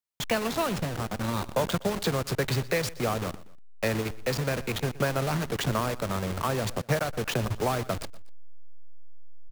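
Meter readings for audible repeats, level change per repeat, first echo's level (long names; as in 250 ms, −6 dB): 2, −7.5 dB, −19.0 dB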